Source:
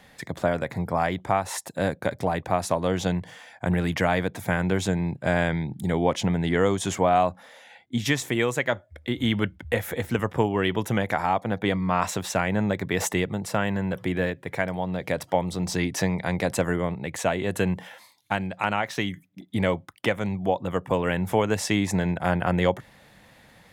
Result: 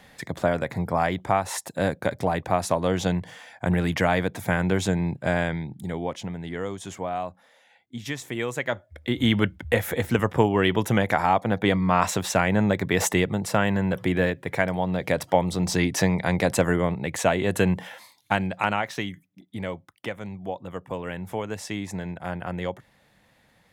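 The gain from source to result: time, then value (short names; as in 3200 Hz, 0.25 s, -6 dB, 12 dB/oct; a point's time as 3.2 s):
5.13 s +1 dB
6.33 s -9.5 dB
7.96 s -9.5 dB
9.22 s +3 dB
18.52 s +3 dB
19.48 s -8 dB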